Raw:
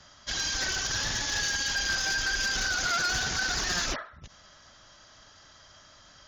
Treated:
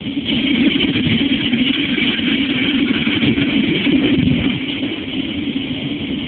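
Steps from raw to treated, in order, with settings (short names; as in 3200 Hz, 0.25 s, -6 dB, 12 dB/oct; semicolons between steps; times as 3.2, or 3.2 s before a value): HPF 62 Hz 12 dB/oct; notches 60/120/180/240/300/360/420 Hz; in parallel at +1 dB: compressor 10:1, threshold -41 dBFS, peak gain reduction 16 dB; on the sum: companded quantiser 8-bit; fuzz box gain 43 dB, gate -49 dBFS; vocal tract filter i; on a send: split-band echo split 380 Hz, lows 82 ms, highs 0.439 s, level -4 dB; on the sum: maximiser +24.5 dB; AMR-NB 4.75 kbps 8000 Hz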